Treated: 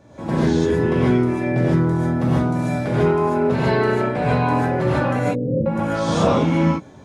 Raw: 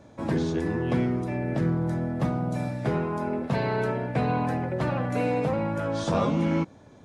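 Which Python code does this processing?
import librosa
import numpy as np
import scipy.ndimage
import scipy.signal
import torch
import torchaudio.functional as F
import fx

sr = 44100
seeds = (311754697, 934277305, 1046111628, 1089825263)

y = fx.cheby_ripple(x, sr, hz=550.0, ripple_db=3, at=(5.19, 5.66))
y = fx.rev_gated(y, sr, seeds[0], gate_ms=170, shape='rising', drr_db=-7.5)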